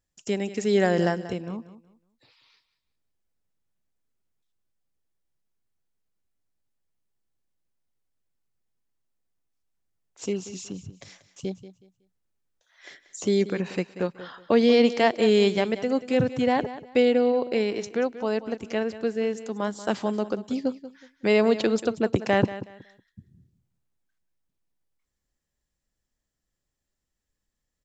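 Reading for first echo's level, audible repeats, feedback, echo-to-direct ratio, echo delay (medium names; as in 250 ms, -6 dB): -14.5 dB, 2, 25%, -14.0 dB, 185 ms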